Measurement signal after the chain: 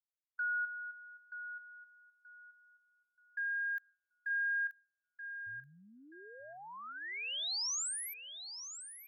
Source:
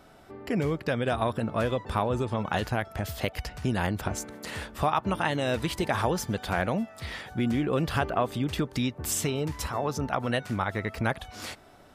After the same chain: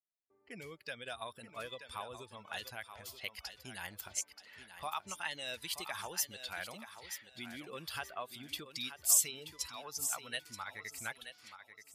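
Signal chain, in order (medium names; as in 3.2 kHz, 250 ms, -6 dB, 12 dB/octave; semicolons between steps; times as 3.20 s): expander on every frequency bin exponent 1.5; gate with hold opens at -51 dBFS; level-controlled noise filter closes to 850 Hz, open at -30.5 dBFS; pre-emphasis filter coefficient 0.97; thinning echo 929 ms, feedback 26%, high-pass 190 Hz, level -10 dB; trim +5 dB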